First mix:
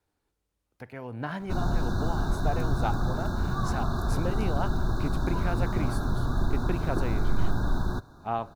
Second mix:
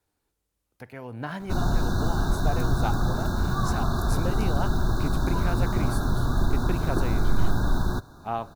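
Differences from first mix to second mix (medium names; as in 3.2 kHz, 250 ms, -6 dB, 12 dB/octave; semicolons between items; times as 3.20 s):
background +3.0 dB; master: add treble shelf 5.9 kHz +7.5 dB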